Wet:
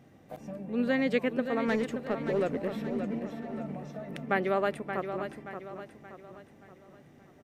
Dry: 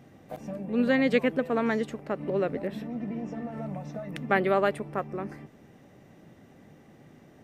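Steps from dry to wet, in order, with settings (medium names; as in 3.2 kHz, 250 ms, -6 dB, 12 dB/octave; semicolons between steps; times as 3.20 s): 1.68–3.19 s: waveshaping leveller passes 1; feedback delay 576 ms, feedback 43%, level -8.5 dB; trim -4 dB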